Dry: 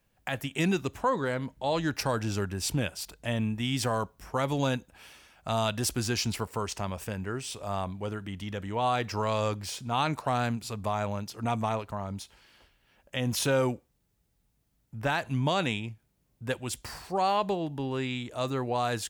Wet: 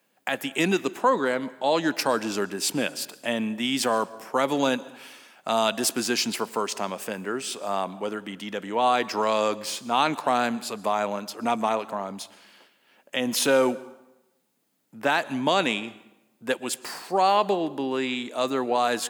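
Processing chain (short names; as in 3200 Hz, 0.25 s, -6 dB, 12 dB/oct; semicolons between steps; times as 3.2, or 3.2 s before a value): HPF 220 Hz 24 dB/oct; notch 5700 Hz, Q 21; plate-style reverb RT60 0.98 s, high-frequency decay 0.75×, pre-delay 0.105 s, DRR 19.5 dB; gain +6 dB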